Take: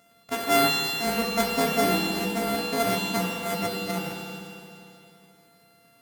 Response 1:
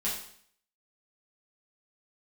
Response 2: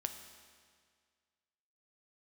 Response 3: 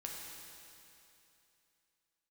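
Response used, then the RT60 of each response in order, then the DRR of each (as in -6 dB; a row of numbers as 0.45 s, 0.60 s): 3; 0.60 s, 1.9 s, 2.9 s; -8.0 dB, 6.0 dB, -2.0 dB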